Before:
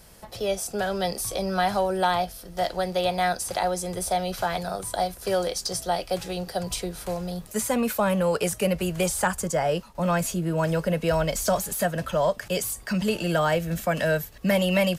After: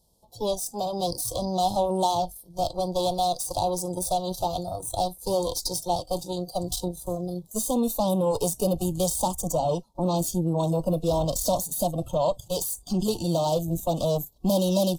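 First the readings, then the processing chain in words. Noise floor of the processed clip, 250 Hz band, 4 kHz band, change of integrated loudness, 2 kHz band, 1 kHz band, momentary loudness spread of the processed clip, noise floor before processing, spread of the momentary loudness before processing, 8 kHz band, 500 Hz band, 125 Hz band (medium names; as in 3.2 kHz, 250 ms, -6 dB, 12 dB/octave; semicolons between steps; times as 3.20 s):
-54 dBFS, 0.0 dB, -1.5 dB, -0.5 dB, under -25 dB, -0.5 dB, 6 LU, -46 dBFS, 6 LU, +0.5 dB, -1.0 dB, 0.0 dB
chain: Chebyshev shaper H 8 -16 dB, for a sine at -11.5 dBFS; Chebyshev band-stop 930–3600 Hz, order 3; spectral noise reduction 15 dB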